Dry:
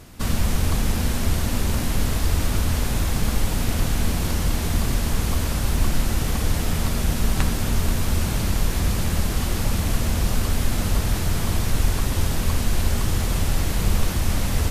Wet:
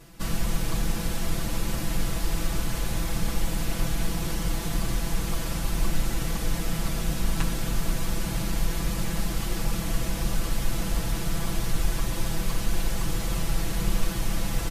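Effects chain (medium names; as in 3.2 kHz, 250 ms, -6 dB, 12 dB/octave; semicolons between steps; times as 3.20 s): comb 6 ms, depth 95%; trim -7.5 dB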